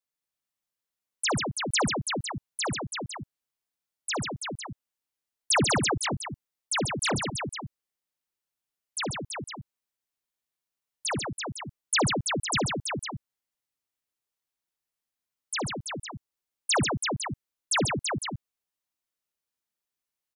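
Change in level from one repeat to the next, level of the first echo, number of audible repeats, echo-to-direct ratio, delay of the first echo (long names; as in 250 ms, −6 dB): repeats not evenly spaced, −16.5 dB, 4, −1.0 dB, 61 ms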